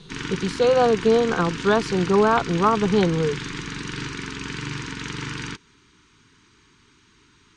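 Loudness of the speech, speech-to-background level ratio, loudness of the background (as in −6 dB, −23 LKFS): −20.5 LKFS, 11.0 dB, −31.5 LKFS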